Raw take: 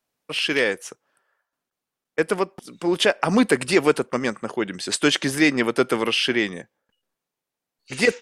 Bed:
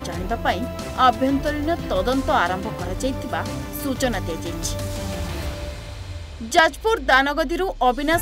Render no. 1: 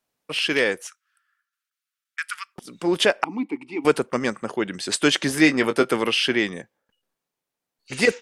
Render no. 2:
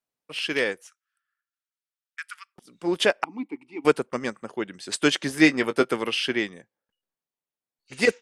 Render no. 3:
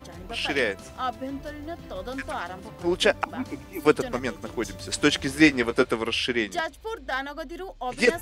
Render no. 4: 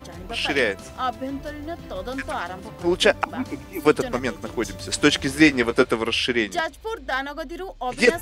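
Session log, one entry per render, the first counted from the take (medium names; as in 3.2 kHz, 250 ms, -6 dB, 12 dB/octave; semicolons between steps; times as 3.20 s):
0.87–2.56 s: elliptic high-pass 1.3 kHz, stop band 50 dB; 3.24–3.85 s: vowel filter u; 5.28–5.85 s: doubling 19 ms -9 dB
upward expansion 1.5:1, over -35 dBFS
add bed -13.5 dB
trim +3.5 dB; peak limiter -2 dBFS, peak gain reduction 2.5 dB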